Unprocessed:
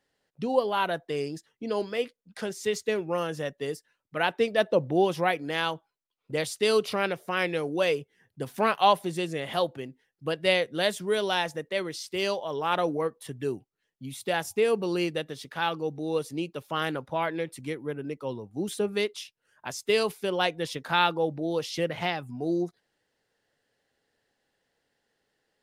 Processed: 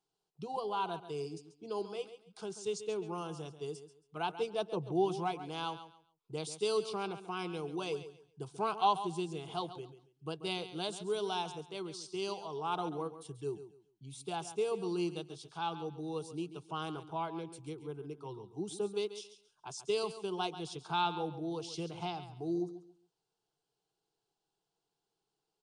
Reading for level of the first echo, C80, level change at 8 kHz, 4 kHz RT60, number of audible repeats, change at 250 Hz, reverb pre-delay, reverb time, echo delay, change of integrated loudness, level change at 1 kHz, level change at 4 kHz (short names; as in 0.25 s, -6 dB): -12.5 dB, none, -7.5 dB, none, 2, -8.0 dB, none, none, 0.137 s, -9.5 dB, -7.0 dB, -10.0 dB